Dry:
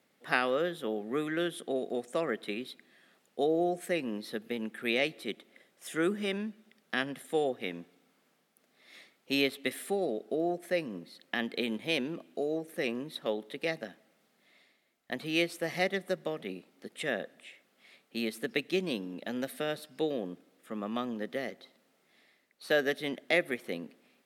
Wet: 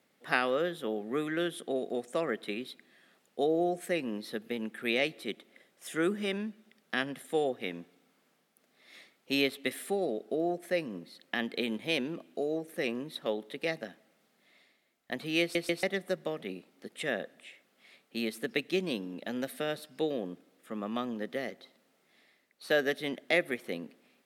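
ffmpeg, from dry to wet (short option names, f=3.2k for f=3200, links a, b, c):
-filter_complex "[0:a]asplit=4[a][b][c][d];[a]atrim=end=15.552[e];[b]atrim=start=15.408:end=15.552[f];[c]atrim=start=15.408:end=15.552[g];[d]atrim=start=15.828[h];[e][f]acrossfade=d=0.004:c1=hsin:c2=hsin[i];[i][g]acrossfade=d=0.004:c1=hsin:c2=hsin[j];[j][h]acrossfade=d=0.004:c1=hsin:c2=hsin"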